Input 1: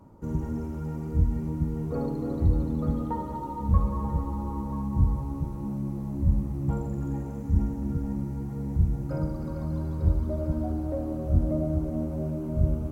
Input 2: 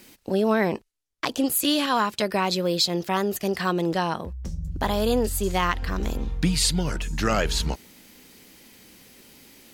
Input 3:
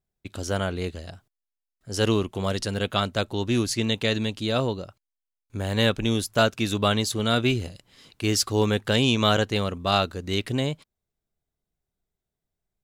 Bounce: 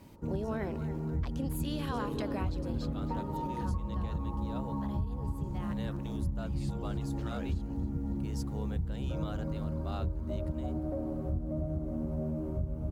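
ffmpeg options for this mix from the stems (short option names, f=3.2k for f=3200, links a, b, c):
-filter_complex "[0:a]volume=-2dB,asplit=2[a][b];[b]volume=-8dB[c];[1:a]volume=-9dB,afade=t=out:st=2.3:d=0.63:silence=0.266073,asplit=2[d][e];[e]volume=-17.5dB[f];[2:a]highpass=610,aeval=exprs='val(0)*gte(abs(val(0)),0.00562)':c=same,equalizer=f=2.7k:t=o:w=2.5:g=-9,volume=-11.5dB[g];[c][f]amix=inputs=2:normalize=0,aecho=0:1:278|556|834|1112|1390|1668|1946|2224:1|0.54|0.292|0.157|0.085|0.0459|0.0248|0.0134[h];[a][d][g][h]amix=inputs=4:normalize=0,highshelf=f=2.4k:g=-7.5,acompressor=threshold=-30dB:ratio=6"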